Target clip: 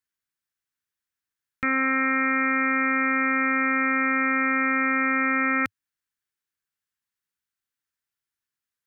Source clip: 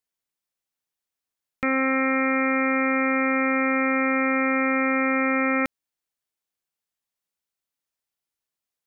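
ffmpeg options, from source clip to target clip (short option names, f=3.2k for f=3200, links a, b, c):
-af "equalizer=f=100:t=o:w=0.67:g=6,equalizer=f=630:t=o:w=0.67:g=-10,equalizer=f=1.6k:t=o:w=0.67:g=8,volume=-2.5dB"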